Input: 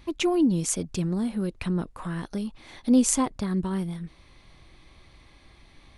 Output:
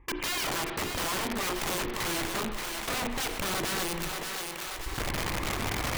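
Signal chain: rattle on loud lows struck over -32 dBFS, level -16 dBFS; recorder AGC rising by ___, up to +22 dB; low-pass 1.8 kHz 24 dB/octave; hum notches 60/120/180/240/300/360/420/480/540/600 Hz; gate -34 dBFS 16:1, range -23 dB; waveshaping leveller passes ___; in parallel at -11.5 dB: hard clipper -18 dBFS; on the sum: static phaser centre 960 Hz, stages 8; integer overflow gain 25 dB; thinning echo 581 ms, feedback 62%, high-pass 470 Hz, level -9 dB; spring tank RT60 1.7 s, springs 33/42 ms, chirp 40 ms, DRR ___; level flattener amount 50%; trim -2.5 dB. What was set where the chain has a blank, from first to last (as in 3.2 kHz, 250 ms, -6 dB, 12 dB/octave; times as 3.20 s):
16 dB/s, 1, 9.5 dB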